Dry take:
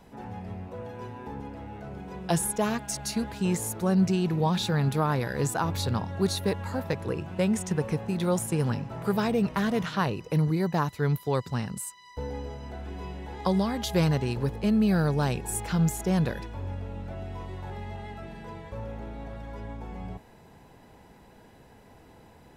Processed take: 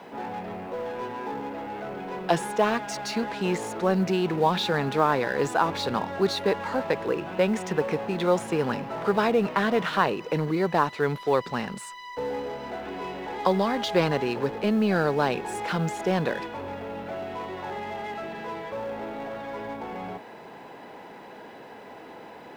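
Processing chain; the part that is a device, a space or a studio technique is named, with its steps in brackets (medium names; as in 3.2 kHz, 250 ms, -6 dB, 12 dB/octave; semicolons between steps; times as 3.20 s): phone line with mismatched companding (band-pass 320–3400 Hz; companding laws mixed up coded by mu); trim +5.5 dB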